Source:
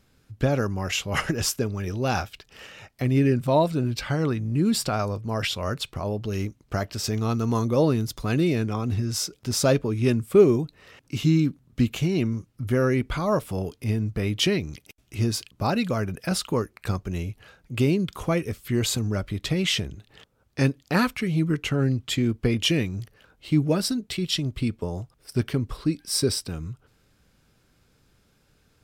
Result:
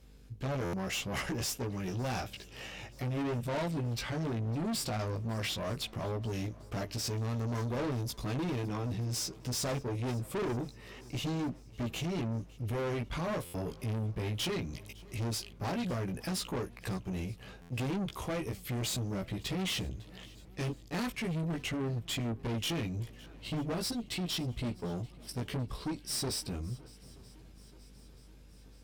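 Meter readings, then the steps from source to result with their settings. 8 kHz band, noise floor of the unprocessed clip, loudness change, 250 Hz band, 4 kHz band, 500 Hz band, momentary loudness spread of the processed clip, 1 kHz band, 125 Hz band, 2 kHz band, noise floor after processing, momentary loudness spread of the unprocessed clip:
-8.0 dB, -64 dBFS, -10.5 dB, -11.5 dB, -8.5 dB, -12.5 dB, 8 LU, -9.5 dB, -9.5 dB, -9.5 dB, -54 dBFS, 10 LU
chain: peaking EQ 1.4 kHz -6 dB 0.43 oct; in parallel at -2 dB: compression, threshold -33 dBFS, peak gain reduction 20.5 dB; on the sum: mains buzz 50 Hz, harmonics 11, -51 dBFS -8 dB/octave; chorus 0.11 Hz, delay 15.5 ms, depth 2.2 ms; valve stage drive 30 dB, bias 0.3; on a send: shuffle delay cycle 929 ms, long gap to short 1.5:1, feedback 54%, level -23 dB; on the sum: buffer glitch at 0.64/13.45/17.61 s, samples 512, times 7; attacks held to a fixed rise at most 480 dB/s; trim -1.5 dB

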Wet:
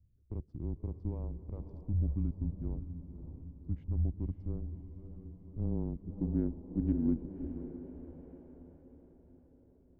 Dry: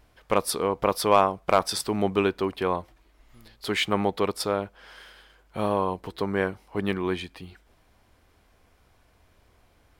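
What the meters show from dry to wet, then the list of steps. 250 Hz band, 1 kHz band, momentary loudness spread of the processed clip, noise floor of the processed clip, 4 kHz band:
-5.5 dB, -35.5 dB, 16 LU, -64 dBFS, under -40 dB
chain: local Wiener filter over 41 samples; peaking EQ 6.5 kHz +14.5 dB 1 oct; peak limiter -11 dBFS, peak gain reduction 7 dB; echo that smears into a reverb 569 ms, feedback 50%, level -10 dB; low-pass sweep 220 Hz -> 600 Hz, 4.96–8.31 s; frequency shift -120 Hz; trim -7.5 dB

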